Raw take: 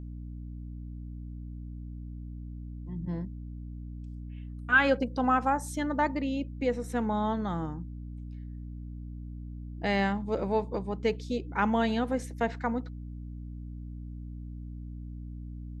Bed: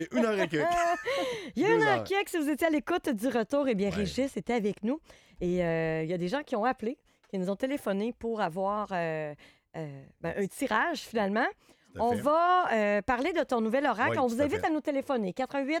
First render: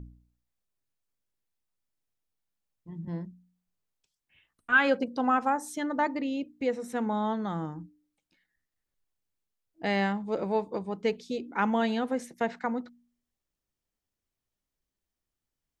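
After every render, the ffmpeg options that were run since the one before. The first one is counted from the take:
-af "bandreject=f=60:t=h:w=4,bandreject=f=120:t=h:w=4,bandreject=f=180:t=h:w=4,bandreject=f=240:t=h:w=4,bandreject=f=300:t=h:w=4"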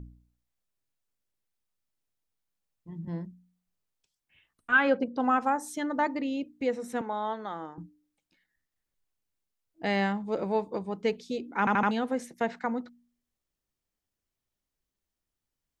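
-filter_complex "[0:a]asplit=3[a][b][c];[a]afade=t=out:st=4.76:d=0.02[d];[b]aemphasis=mode=reproduction:type=75fm,afade=t=in:st=4.76:d=0.02,afade=t=out:st=5.19:d=0.02[e];[c]afade=t=in:st=5.19:d=0.02[f];[d][e][f]amix=inputs=3:normalize=0,asettb=1/sr,asplit=3[g][h][i];[g]atrim=end=7.014[j];[h]atrim=start=7.01:end=7.78,asetpts=PTS-STARTPTS,afade=t=in:d=0.004:c=qsin,afade=t=out:st=0.766:d=0.004:c=qsin,highpass=420,lowpass=4.7k[k];[i]atrim=start=7.776[l];[j][k]acrossfade=d=0.004:c1=hsin:c2=qsin[m];[m][l]acrossfade=d=0.004:c1=qsin:c2=hsin,asplit=5[n][o][p][q][r];[n]atrim=end=11.672[s];[o]atrim=start=11.588:end=11.672[t];[p]atrim=start=11.588:end=11.672[u];[q]atrim=start=11.588:end=11.672[v];[r]atrim=start=11.908[w];[s][t]acrossfade=d=0.004:c1=hsin:c2=hsin[x];[x][u]acrossfade=d=0.004:c1=hsin:c2=hsin[y];[y][v]acrossfade=d=0.004:c1=hsin:c2=hsin[z];[z][w]acrossfade=d=0.004:c1=hsin:c2=hsin"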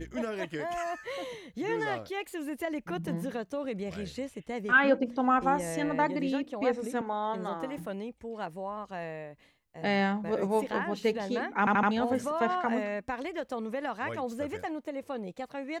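-filter_complex "[1:a]volume=-7dB[a];[0:a][a]amix=inputs=2:normalize=0"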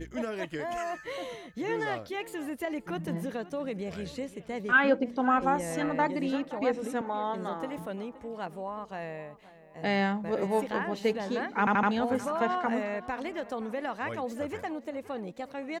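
-filter_complex "[0:a]asplit=2[a][b];[b]adelay=522,lowpass=f=3.6k:p=1,volume=-17dB,asplit=2[c][d];[d]adelay=522,lowpass=f=3.6k:p=1,volume=0.43,asplit=2[e][f];[f]adelay=522,lowpass=f=3.6k:p=1,volume=0.43,asplit=2[g][h];[h]adelay=522,lowpass=f=3.6k:p=1,volume=0.43[i];[a][c][e][g][i]amix=inputs=5:normalize=0"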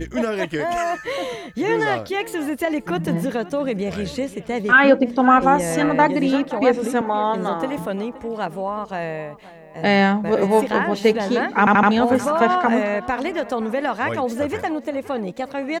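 -af "volume=11.5dB,alimiter=limit=-3dB:level=0:latency=1"

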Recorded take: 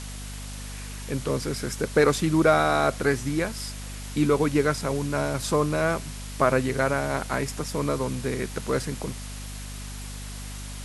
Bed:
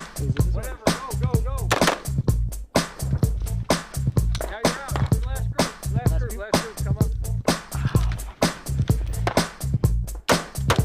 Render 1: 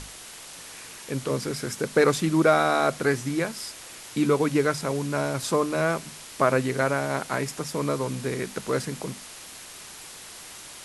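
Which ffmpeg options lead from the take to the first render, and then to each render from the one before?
-af "bandreject=f=50:t=h:w=6,bandreject=f=100:t=h:w=6,bandreject=f=150:t=h:w=6,bandreject=f=200:t=h:w=6,bandreject=f=250:t=h:w=6"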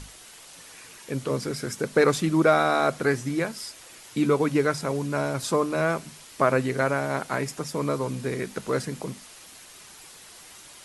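-af "afftdn=nr=6:nf=-43"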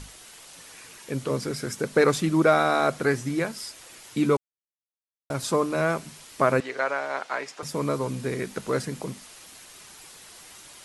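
-filter_complex "[0:a]asettb=1/sr,asplit=3[a][b][c];[a]atrim=end=6.604[d];[b]atrim=start=6.6:end=7.63,asetpts=PTS-STARTPTS,afade=t=in:d=0.004:c=qsin,afade=t=out:st=1.026:d=0.004:c=qsin,highpass=560,lowpass=5.1k[e];[c]atrim=start=7.626[f];[d][e]acrossfade=d=0.004:c1=hsin:c2=qsin[g];[g][f]acrossfade=d=0.004:c1=qsin:c2=hsin,asplit=3[h][i][j];[h]atrim=end=4.37,asetpts=PTS-STARTPTS,afade=t=out:st=4.366:d=0.004:c=hsin[k];[i]atrim=start=4.37:end=5.3,asetpts=PTS-STARTPTS,volume=0[l];[j]atrim=start=5.3,asetpts=PTS-STARTPTS,afade=t=in:d=0.004:c=hsin[m];[k][l][m]concat=n=3:v=0:a=1"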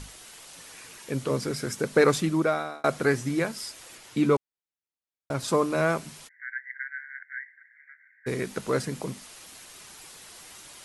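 -filter_complex "[0:a]asettb=1/sr,asplit=3[a][b][c];[a]atrim=end=3.974[d];[b]atrim=start=3.97:end=5.48,asetpts=PTS-STARTPTS,afade=t=in:d=0.004:c=qsin,afade=t=out:st=1.506:d=0.004:c=qsin,highshelf=f=6.2k:g=-6.5[e];[c]atrim=start=5.476[f];[d][e]acrossfade=d=0.004:c1=hsin:c2=qsin[g];[g][f]acrossfade=d=0.004:c1=qsin:c2=hsin,asplit=3[h][i][j];[h]afade=t=out:st=6.27:d=0.02[k];[i]asuperpass=centerf=1800:order=12:qfactor=3,afade=t=in:st=6.27:d=0.02,afade=t=out:st=8.26:d=0.02[l];[j]afade=t=in:st=8.26:d=0.02[m];[k][l][m]amix=inputs=3:normalize=0,asplit=2[n][o];[n]atrim=end=2.84,asetpts=PTS-STARTPTS,afade=t=out:st=2.15:d=0.69[p];[o]atrim=start=2.84,asetpts=PTS-STARTPTS,afade=t=in:d=0.004:c=hsin[q];[p][q]concat=n=2:v=0:a=1"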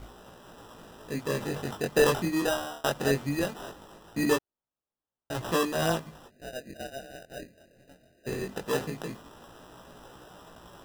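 -af "acrusher=samples=20:mix=1:aa=0.000001,flanger=delay=16.5:depth=6.2:speed=0.2"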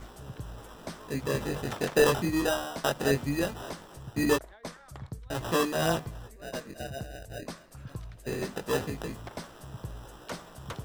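-filter_complex "[1:a]volume=-20dB[a];[0:a][a]amix=inputs=2:normalize=0"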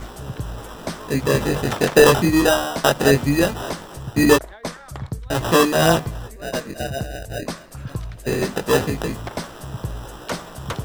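-af "volume=11.5dB,alimiter=limit=-2dB:level=0:latency=1"

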